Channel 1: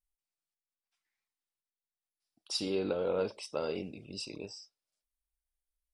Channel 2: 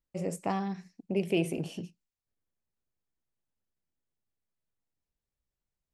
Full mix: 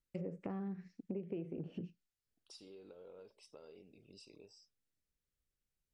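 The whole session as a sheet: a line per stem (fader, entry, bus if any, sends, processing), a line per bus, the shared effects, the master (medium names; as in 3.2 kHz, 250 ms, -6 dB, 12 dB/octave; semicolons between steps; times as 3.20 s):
-14.0 dB, 0.00 s, no send, peaking EQ 420 Hz +5.5 dB 0.42 oct; compression 4:1, threshold -41 dBFS, peak gain reduction 14 dB
-1.5 dB, 0.00 s, no send, high-order bell 830 Hz -9 dB 1 oct; low-pass that closes with the level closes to 1.1 kHz, closed at -32.5 dBFS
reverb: none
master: compression 12:1, threshold -38 dBFS, peak gain reduction 13.5 dB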